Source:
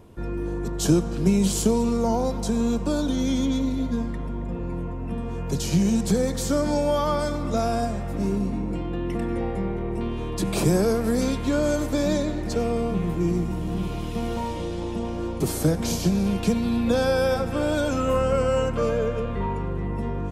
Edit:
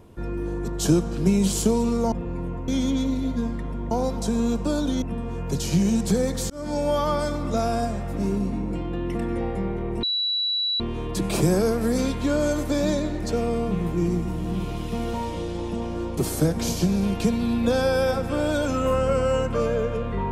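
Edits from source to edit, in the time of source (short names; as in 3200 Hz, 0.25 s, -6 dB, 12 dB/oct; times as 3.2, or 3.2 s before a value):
2.12–3.23 swap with 4.46–5.02
6.5–7 fade in equal-power
10.03 add tone 3930 Hz -21.5 dBFS 0.77 s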